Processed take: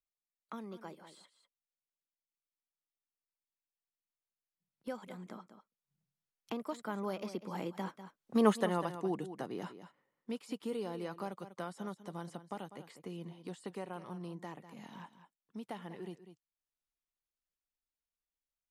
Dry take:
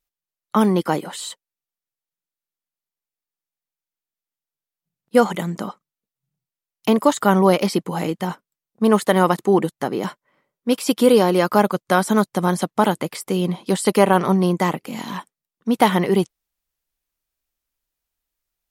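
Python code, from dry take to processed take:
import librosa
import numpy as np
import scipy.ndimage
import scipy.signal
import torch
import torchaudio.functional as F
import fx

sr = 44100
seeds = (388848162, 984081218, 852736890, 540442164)

y = fx.doppler_pass(x, sr, speed_mps=18, closest_m=1.7, pass_at_s=8.49)
y = fx.high_shelf(y, sr, hz=11000.0, db=-11.0)
y = y + 10.0 ** (-15.0 / 20.0) * np.pad(y, (int(196 * sr / 1000.0), 0))[:len(y)]
y = fx.band_squash(y, sr, depth_pct=70)
y = y * librosa.db_to_amplitude(2.5)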